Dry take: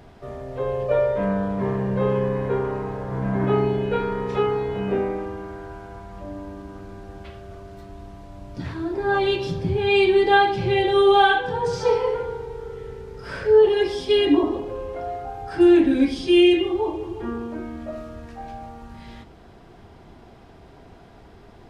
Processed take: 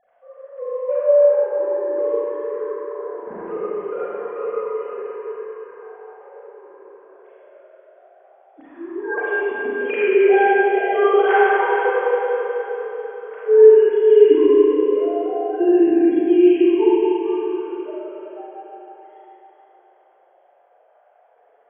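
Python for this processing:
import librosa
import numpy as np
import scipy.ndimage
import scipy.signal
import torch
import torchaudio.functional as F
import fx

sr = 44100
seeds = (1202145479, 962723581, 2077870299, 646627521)

y = fx.sine_speech(x, sr)
y = scipy.signal.sosfilt(scipy.signal.butter(2, 1800.0, 'lowpass', fs=sr, output='sos'), y)
y = fx.hum_notches(y, sr, base_hz=60, count=6)
y = fx.echo_feedback(y, sr, ms=429, feedback_pct=49, wet_db=-12.0)
y = fx.rev_schroeder(y, sr, rt60_s=3.2, comb_ms=32, drr_db=-8.5)
y = y * librosa.db_to_amplitude(-3.5)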